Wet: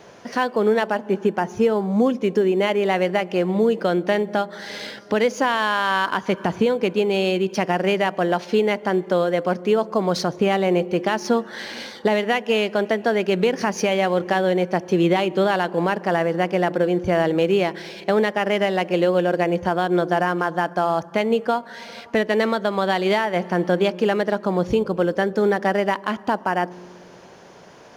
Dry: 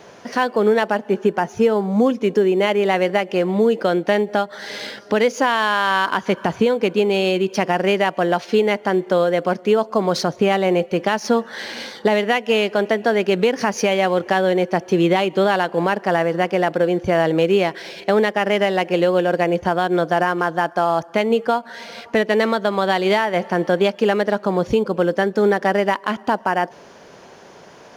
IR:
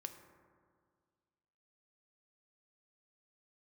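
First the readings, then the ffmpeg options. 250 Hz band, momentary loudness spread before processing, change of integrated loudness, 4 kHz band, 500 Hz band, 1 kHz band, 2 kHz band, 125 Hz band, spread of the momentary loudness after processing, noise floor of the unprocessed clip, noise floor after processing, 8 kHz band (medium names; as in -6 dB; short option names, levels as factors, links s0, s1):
-1.5 dB, 4 LU, -2.0 dB, -2.5 dB, -2.5 dB, -2.5 dB, -2.5 dB, -0.5 dB, 4 LU, -44 dBFS, -44 dBFS, -2.5 dB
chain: -filter_complex "[0:a]asplit=2[s0][s1];[1:a]atrim=start_sample=2205,lowshelf=f=300:g=11.5[s2];[s1][s2]afir=irnorm=-1:irlink=0,volume=0.282[s3];[s0][s3]amix=inputs=2:normalize=0,volume=0.631"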